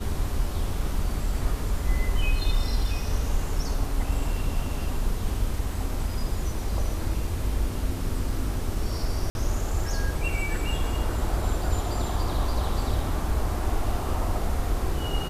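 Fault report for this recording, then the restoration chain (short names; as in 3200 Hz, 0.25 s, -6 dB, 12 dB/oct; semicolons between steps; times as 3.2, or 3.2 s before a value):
9.3–9.35 gap 51 ms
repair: interpolate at 9.3, 51 ms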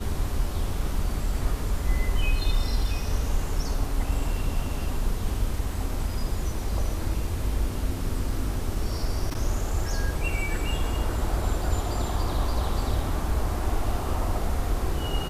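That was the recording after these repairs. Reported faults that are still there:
none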